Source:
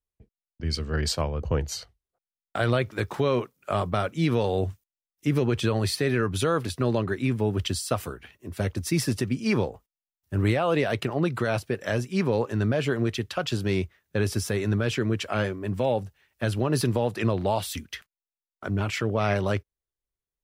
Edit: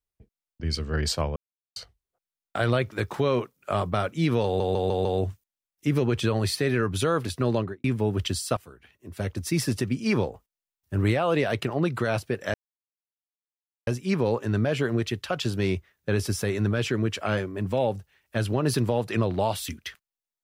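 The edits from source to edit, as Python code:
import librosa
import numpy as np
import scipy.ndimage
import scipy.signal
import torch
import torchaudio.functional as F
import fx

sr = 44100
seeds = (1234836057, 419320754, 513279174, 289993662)

y = fx.studio_fade_out(x, sr, start_s=6.97, length_s=0.27)
y = fx.edit(y, sr, fx.silence(start_s=1.36, length_s=0.4),
    fx.stutter(start_s=4.45, slice_s=0.15, count=5),
    fx.fade_in_from(start_s=7.97, length_s=1.33, curve='qsin', floor_db=-19.5),
    fx.insert_silence(at_s=11.94, length_s=1.33), tone=tone)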